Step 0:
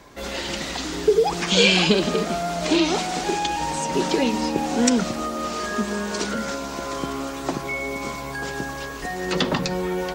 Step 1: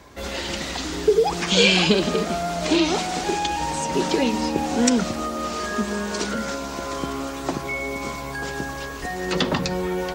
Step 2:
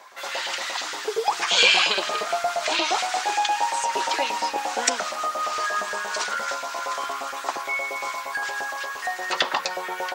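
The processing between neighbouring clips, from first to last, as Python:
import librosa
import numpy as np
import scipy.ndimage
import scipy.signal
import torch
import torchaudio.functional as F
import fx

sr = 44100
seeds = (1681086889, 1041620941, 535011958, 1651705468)

y1 = fx.peak_eq(x, sr, hz=78.0, db=12.0, octaves=0.3)
y2 = fx.filter_lfo_highpass(y1, sr, shape='saw_up', hz=8.6, low_hz=630.0, high_hz=1700.0, q=1.9)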